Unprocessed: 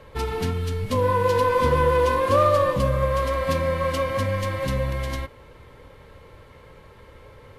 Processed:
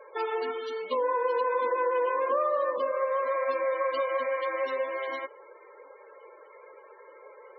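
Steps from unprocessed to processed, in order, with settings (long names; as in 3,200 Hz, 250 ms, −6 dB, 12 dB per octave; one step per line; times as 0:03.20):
high-pass filter 380 Hz 24 dB per octave
downward compressor 4 to 1, threshold −26 dBFS, peak gain reduction 10 dB
spectral peaks only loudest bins 32
level +1 dB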